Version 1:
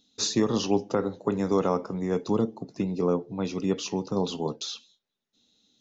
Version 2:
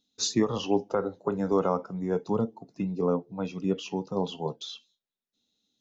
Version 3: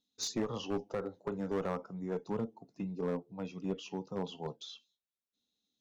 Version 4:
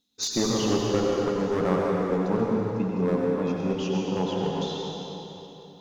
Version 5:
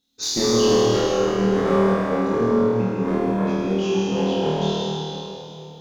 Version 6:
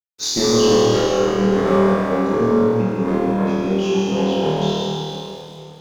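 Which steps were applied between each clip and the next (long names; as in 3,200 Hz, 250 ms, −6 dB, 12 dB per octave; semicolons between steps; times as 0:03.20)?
noise reduction from a noise print of the clip's start 10 dB
asymmetric clip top −23.5 dBFS; level −8 dB
convolution reverb RT60 3.4 s, pre-delay 82 ms, DRR −3 dB; level +8 dB
flutter between parallel walls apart 4.4 metres, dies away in 1.2 s
dead-zone distortion −50 dBFS; level +3 dB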